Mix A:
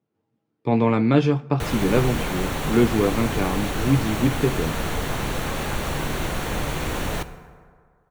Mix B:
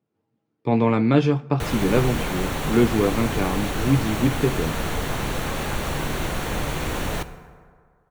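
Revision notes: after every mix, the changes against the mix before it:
none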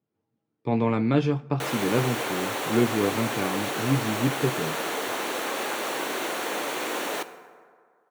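speech -4.5 dB; background: add HPF 300 Hz 24 dB/oct

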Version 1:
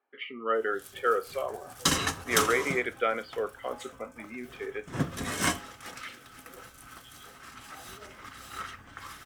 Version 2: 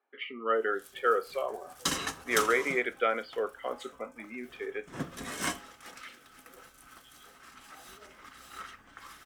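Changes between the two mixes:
background -5.0 dB; master: add bell 100 Hz -10.5 dB 0.95 oct

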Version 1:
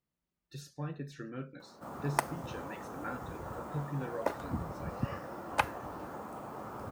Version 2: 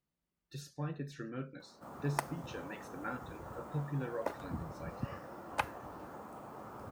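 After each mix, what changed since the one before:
background -5.0 dB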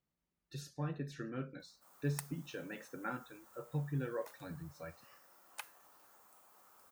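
background: add differentiator

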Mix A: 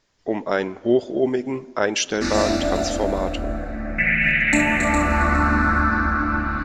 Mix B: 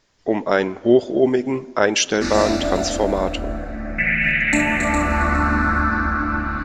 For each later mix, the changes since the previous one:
speech +4.0 dB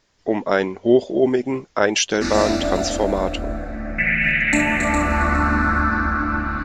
speech: send off

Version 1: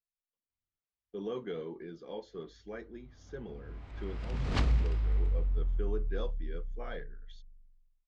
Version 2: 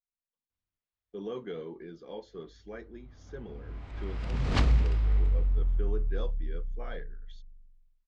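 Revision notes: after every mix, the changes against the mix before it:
background +4.0 dB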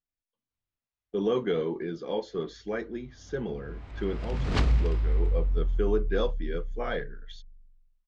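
speech +11.0 dB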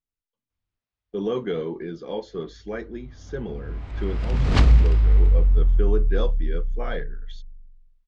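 background +5.5 dB; master: add low shelf 160 Hz +4 dB

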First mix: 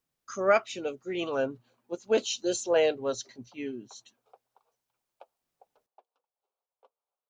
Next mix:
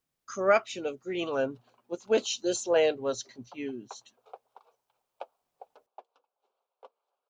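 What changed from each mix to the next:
background +11.0 dB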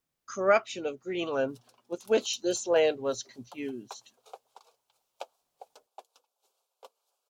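background: remove LPF 2000 Hz 12 dB/oct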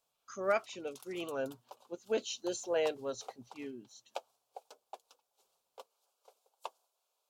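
speech -8.0 dB; background: entry -1.05 s

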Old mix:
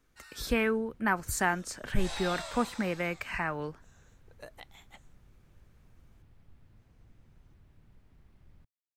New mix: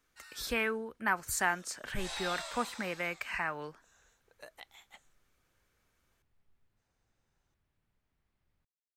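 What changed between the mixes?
first sound -11.0 dB; master: add low shelf 470 Hz -11 dB

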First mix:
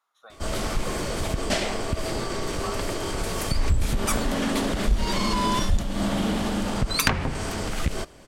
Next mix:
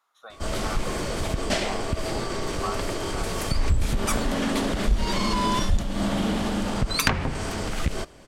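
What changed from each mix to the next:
speech +4.5 dB; background: add high shelf 11000 Hz -5 dB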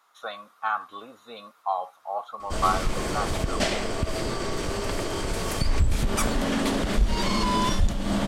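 speech +9.5 dB; background: entry +2.10 s

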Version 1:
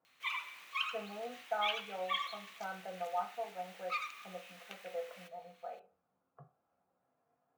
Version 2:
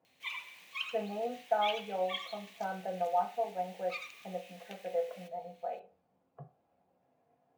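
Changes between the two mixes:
speech +8.5 dB; master: add bell 1300 Hz -12.5 dB 0.6 oct

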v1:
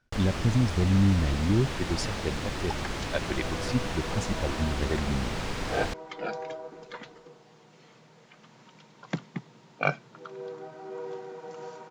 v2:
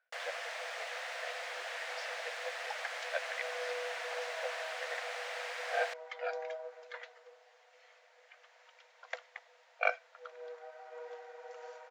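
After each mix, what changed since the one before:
speech: add air absorption 170 m; master: add rippled Chebyshev high-pass 480 Hz, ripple 9 dB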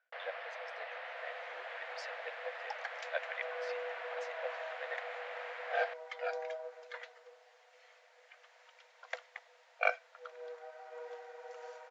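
first sound: add air absorption 420 m

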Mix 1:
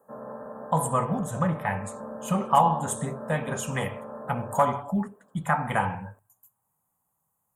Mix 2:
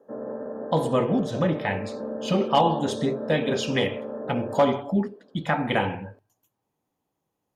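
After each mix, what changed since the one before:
master: remove EQ curve 180 Hz 0 dB, 320 Hz -15 dB, 1100 Hz +6 dB, 4900 Hz -19 dB, 7800 Hz +14 dB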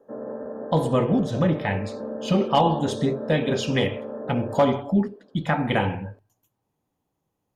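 speech: add low shelf 140 Hz +9 dB

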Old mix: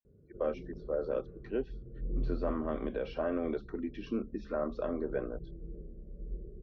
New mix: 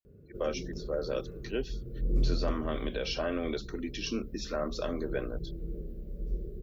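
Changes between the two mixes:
background +6.5 dB; master: remove LPF 1300 Hz 12 dB/oct

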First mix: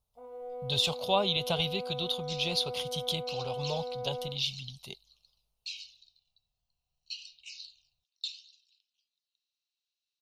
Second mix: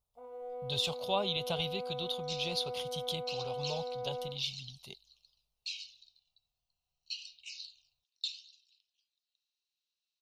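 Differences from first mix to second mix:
speech -5.0 dB; first sound: add low shelf 320 Hz -5.5 dB

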